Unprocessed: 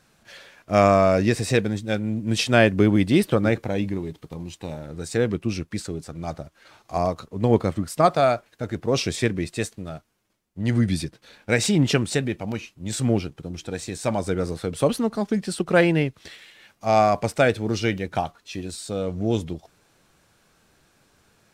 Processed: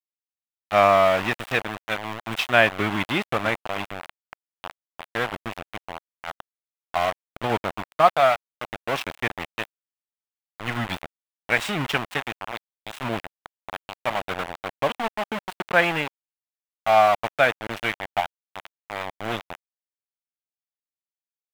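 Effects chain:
centre clipping without the shift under −22 dBFS
flat-topped bell 1,500 Hz +13 dB 2.8 octaves
level −9.5 dB

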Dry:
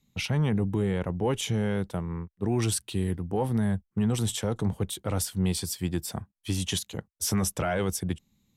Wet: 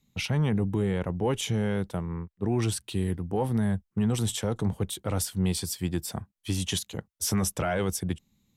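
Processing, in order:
0:02.06–0:02.84: high-shelf EQ 4,200 Hz −5.5 dB

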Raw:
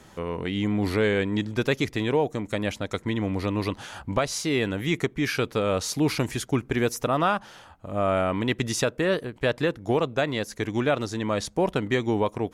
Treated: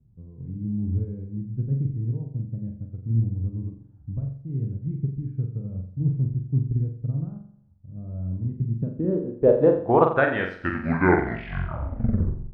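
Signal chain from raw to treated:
turntable brake at the end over 2.37 s
low-pass filter sweep 130 Hz → 1,800 Hz, 0:08.59–0:10.34
flutter between parallel walls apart 7.5 metres, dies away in 0.69 s
expander for the loud parts 1.5 to 1, over −36 dBFS
level +2.5 dB

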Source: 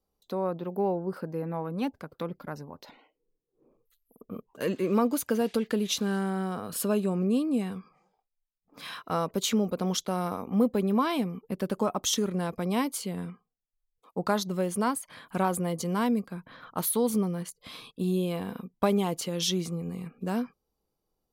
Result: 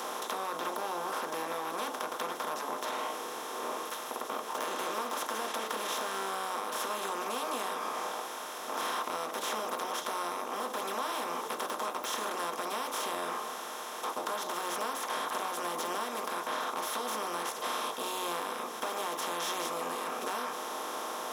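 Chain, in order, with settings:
compressor on every frequency bin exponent 0.2
de-essing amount 100%
high-pass filter 720 Hz 12 dB per octave
downward compressor, threshold −29 dBFS, peak gain reduction 7.5 dB
convolution reverb RT60 0.25 s, pre-delay 3 ms, DRR 5.5 dB

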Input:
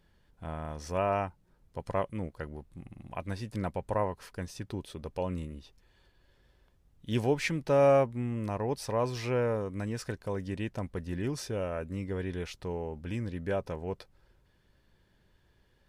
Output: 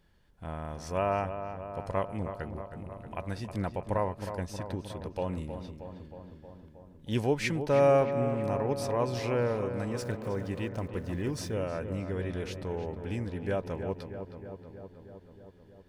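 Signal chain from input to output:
0:09.98–0:11.54: centre clipping without the shift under −53.5 dBFS
on a send: feedback echo with a low-pass in the loop 315 ms, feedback 72%, low-pass 2,500 Hz, level −9 dB

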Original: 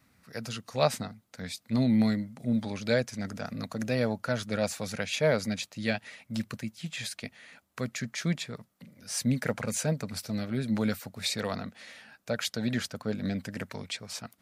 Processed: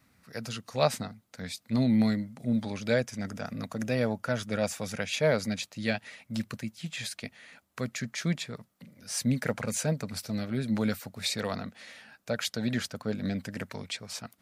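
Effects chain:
0:02.81–0:05.09: notch filter 4,200 Hz, Q 8.5

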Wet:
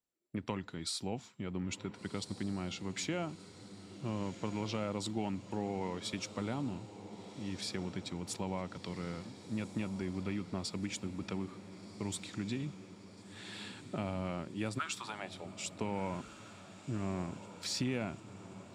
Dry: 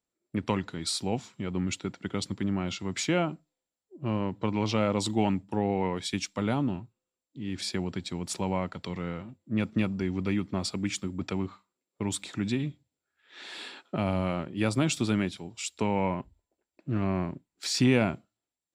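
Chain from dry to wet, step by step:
downward compressor 2.5 to 1, threshold −28 dBFS, peak gain reduction 7.5 dB
0:14.78–0:15.44: high-pass with resonance 1,400 Hz → 540 Hz, resonance Q 5.4
feedback delay with all-pass diffusion 1,452 ms, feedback 61%, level −13 dB
level −6 dB

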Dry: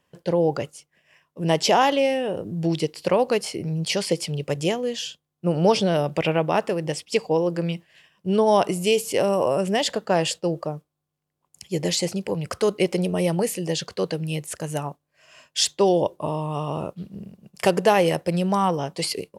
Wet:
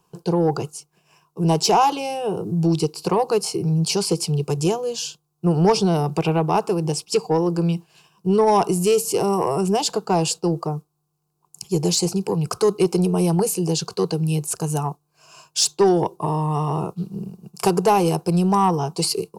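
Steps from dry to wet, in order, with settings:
in parallel at −2.5 dB: downward compressor, threshold −30 dBFS, peak gain reduction 16.5 dB
on the sum: parametric band 3,300 Hz −9.5 dB 0.27 octaves
phaser with its sweep stopped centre 380 Hz, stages 8
soft clipping −12.5 dBFS, distortion −21 dB
level +4.5 dB

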